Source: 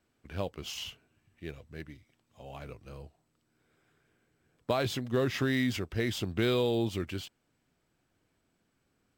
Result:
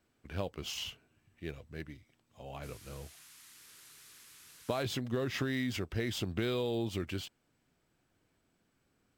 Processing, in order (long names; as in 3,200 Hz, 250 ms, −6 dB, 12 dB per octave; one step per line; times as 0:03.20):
downward compressor, threshold −30 dBFS, peak gain reduction 6.5 dB
0:02.62–0:04.82: noise in a band 1,100–13,000 Hz −57 dBFS